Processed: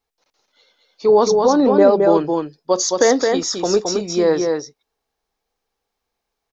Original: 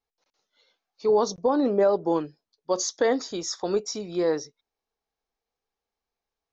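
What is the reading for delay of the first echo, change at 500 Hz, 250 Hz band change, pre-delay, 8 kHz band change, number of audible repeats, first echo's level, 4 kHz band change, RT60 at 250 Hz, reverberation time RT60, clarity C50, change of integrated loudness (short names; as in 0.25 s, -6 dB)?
0.218 s, +9.5 dB, +9.5 dB, none, n/a, 1, -4.0 dB, +9.5 dB, none, none, none, +9.0 dB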